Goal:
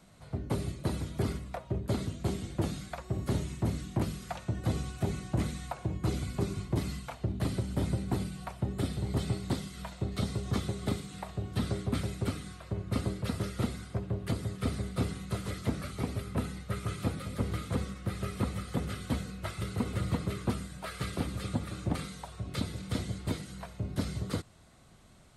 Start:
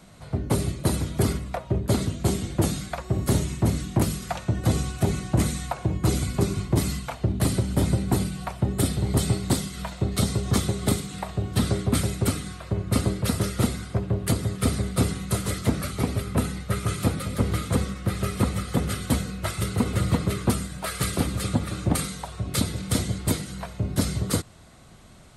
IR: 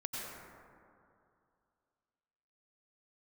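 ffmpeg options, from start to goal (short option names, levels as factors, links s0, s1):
-filter_complex "[0:a]acrossover=split=4800[s0][s1];[s1]acompressor=threshold=0.00794:ratio=4:attack=1:release=60[s2];[s0][s2]amix=inputs=2:normalize=0,volume=0.376"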